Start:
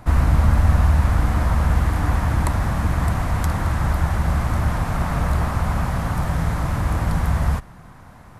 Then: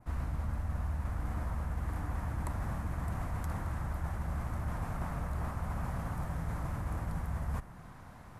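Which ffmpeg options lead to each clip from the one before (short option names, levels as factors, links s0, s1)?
-af "adynamicequalizer=threshold=0.00282:dfrequency=3900:dqfactor=0.88:tfrequency=3900:tqfactor=0.88:attack=5:release=100:ratio=0.375:range=3:mode=cutabove:tftype=bell,areverse,acompressor=threshold=0.0501:ratio=5,areverse,volume=0.447"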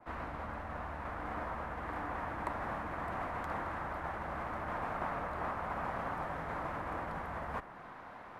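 -filter_complex "[0:a]acrossover=split=290 3600:gain=0.1 1 0.1[s0][s1][s2];[s0][s1][s2]amix=inputs=3:normalize=0,volume=2.11"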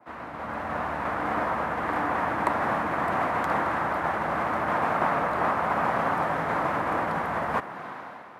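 -af "highpass=140,dynaudnorm=f=110:g=9:m=3.16,volume=1.41"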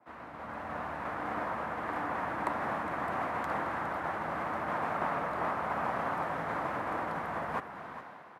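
-af "aecho=1:1:412:0.237,volume=0.398"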